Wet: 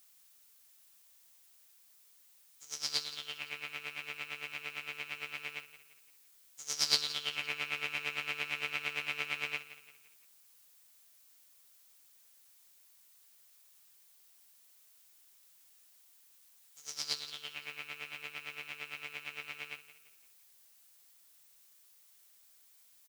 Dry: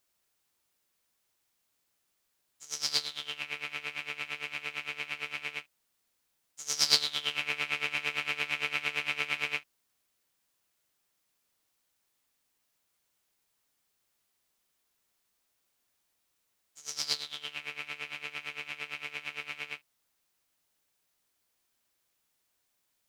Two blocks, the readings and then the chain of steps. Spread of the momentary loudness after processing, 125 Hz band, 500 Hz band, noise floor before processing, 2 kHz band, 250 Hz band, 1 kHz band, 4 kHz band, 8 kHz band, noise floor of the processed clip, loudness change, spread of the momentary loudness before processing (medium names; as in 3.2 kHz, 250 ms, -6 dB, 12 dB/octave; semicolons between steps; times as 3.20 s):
11 LU, -4.0 dB, -4.0 dB, -78 dBFS, -4.5 dB, -4.5 dB, -4.5 dB, -4.5 dB, -4.0 dB, -64 dBFS, -4.5 dB, 9 LU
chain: added noise blue -59 dBFS; feedback delay 171 ms, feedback 42%, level -15 dB; trim -4.5 dB